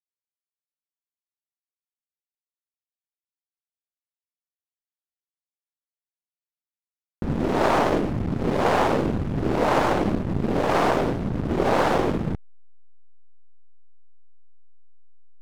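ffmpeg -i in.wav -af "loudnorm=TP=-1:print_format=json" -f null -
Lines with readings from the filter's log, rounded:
"input_i" : "-23.1",
"input_tp" : "-6.5",
"input_lra" : "4.9",
"input_thresh" : "-33.2",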